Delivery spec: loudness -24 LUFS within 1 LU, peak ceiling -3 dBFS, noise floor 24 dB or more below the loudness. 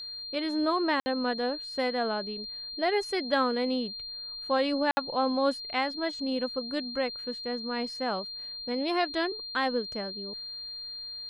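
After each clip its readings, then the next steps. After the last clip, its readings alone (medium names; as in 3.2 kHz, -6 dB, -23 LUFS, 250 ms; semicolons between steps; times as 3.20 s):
dropouts 2; longest dropout 60 ms; steady tone 4.2 kHz; tone level -37 dBFS; loudness -30.0 LUFS; peak level -12.5 dBFS; loudness target -24.0 LUFS
-> interpolate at 1.00/4.91 s, 60 ms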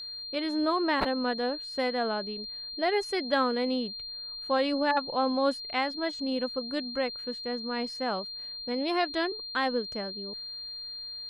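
dropouts 0; steady tone 4.2 kHz; tone level -37 dBFS
-> band-stop 4.2 kHz, Q 30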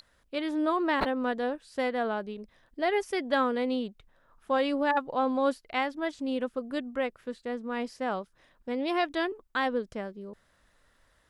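steady tone not found; loudness -30.5 LUFS; peak level -13.0 dBFS; loudness target -24.0 LUFS
-> trim +6.5 dB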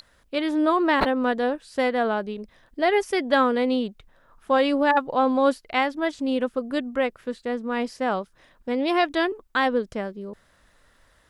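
loudness -24.0 LUFS; peak level -6.5 dBFS; noise floor -61 dBFS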